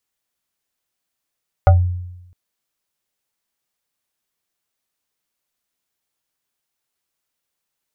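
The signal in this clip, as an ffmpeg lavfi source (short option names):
-f lavfi -i "aevalsrc='0.596*pow(10,-3*t/0.94)*sin(2*PI*89.3*t+1.1*pow(10,-3*t/0.2)*sin(2*PI*7.5*89.3*t))':d=0.66:s=44100"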